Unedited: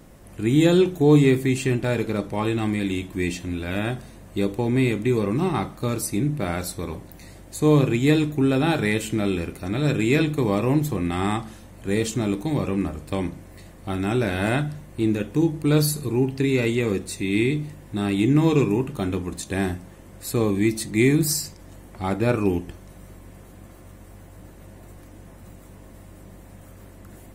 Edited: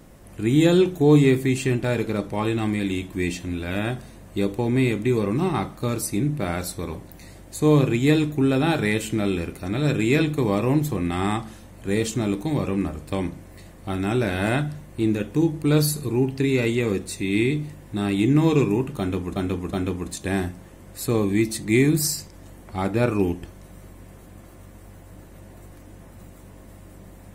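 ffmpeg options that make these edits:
ffmpeg -i in.wav -filter_complex "[0:a]asplit=3[link_01][link_02][link_03];[link_01]atrim=end=19.362[link_04];[link_02]atrim=start=18.988:end=19.362[link_05];[link_03]atrim=start=18.988[link_06];[link_04][link_05]acrossfade=duration=0.004:curve1=hsin:curve2=hsin[link_07];[link_07][link_06]acrossfade=duration=0.004:curve1=hsin:curve2=hsin" out.wav

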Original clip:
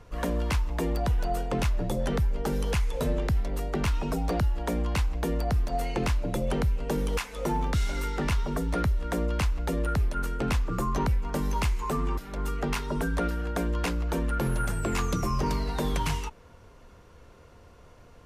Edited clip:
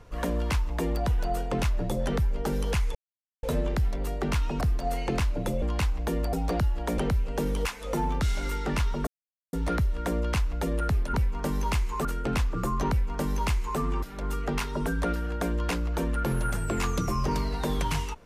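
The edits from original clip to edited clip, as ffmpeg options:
ffmpeg -i in.wav -filter_complex "[0:a]asplit=9[link_01][link_02][link_03][link_04][link_05][link_06][link_07][link_08][link_09];[link_01]atrim=end=2.95,asetpts=PTS-STARTPTS,afade=type=out:start_time=2.946:duration=0.004:curve=hsin,apad=pad_dur=0.48[link_10];[link_02]atrim=start=2.95:end=4.132,asetpts=PTS-STARTPTS,afade=type=in:duration=0.004:curve=hsin[link_11];[link_03]atrim=start=5.488:end=6.502[link_12];[link_04]atrim=start=4.778:end=5.492[link_13];[link_05]atrim=start=4.128:end=4.782[link_14];[link_06]atrim=start=6.498:end=8.59,asetpts=PTS-STARTPTS,afade=type=out:start_time=2.088:duration=0.004:curve=hsin,apad=pad_dur=0.46[link_15];[link_07]atrim=start=8.59:end=10.202,asetpts=PTS-STARTPTS,afade=type=in:duration=0.004:curve=hsin[link_16];[link_08]atrim=start=11.038:end=11.952[link_17];[link_09]atrim=start=10.198[link_18];[link_10][link_11]concat=n=2:v=0:a=1[link_19];[link_19][link_12]acrossfade=duration=0.004:curve1=hsin:curve2=hsin[link_20];[link_20][link_13]acrossfade=duration=0.004:curve1=hsin:curve2=hsin[link_21];[link_21][link_14]acrossfade=duration=0.004:curve1=hsin:curve2=hsin[link_22];[link_15][link_16]concat=n=2:v=0:a=1[link_23];[link_22][link_23]acrossfade=duration=0.004:curve1=hsin:curve2=hsin[link_24];[link_24][link_17]acrossfade=duration=0.004:curve1=hsin:curve2=hsin[link_25];[link_25][link_18]acrossfade=duration=0.004:curve1=hsin:curve2=hsin" out.wav

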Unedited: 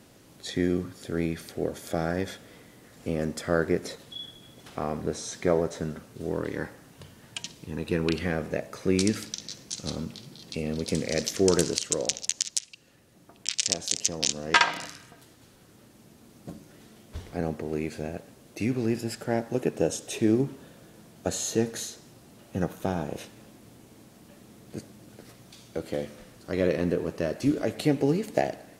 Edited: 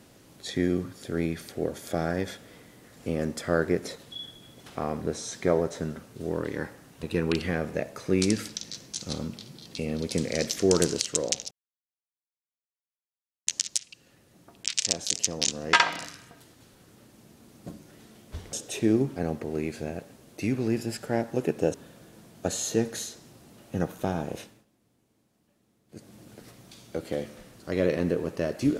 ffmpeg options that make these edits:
ffmpeg -i in.wav -filter_complex "[0:a]asplit=8[link_01][link_02][link_03][link_04][link_05][link_06][link_07][link_08];[link_01]atrim=end=7.032[link_09];[link_02]atrim=start=7.798:end=12.28,asetpts=PTS-STARTPTS,afade=type=out:start_time=4.478:duration=0.004:curve=hsin,apad=pad_dur=1.96[link_10];[link_03]atrim=start=12.28:end=17.342,asetpts=PTS-STARTPTS,afade=type=in:duration=0.004:curve=hsin[link_11];[link_04]atrim=start=19.918:end=20.552[link_12];[link_05]atrim=start=17.338:end=19.922[link_13];[link_06]atrim=start=20.548:end=23.46,asetpts=PTS-STARTPTS,afade=type=out:start_time=2.642:duration=0.27:silence=0.125893[link_14];[link_07]atrim=start=23.46:end=24.69,asetpts=PTS-STARTPTS,volume=-18dB[link_15];[link_08]atrim=start=24.69,asetpts=PTS-STARTPTS,afade=type=in:duration=0.27:silence=0.125893[link_16];[link_10][link_11]concat=n=2:v=0:a=1[link_17];[link_09][link_17]acrossfade=duration=0.004:curve1=hsin:curve2=hsin[link_18];[link_18][link_12]acrossfade=duration=0.004:curve1=hsin:curve2=hsin[link_19];[link_19][link_13]acrossfade=duration=0.004:curve1=hsin:curve2=hsin[link_20];[link_14][link_15][link_16]concat=n=3:v=0:a=1[link_21];[link_20][link_21]acrossfade=duration=0.004:curve1=hsin:curve2=hsin" out.wav

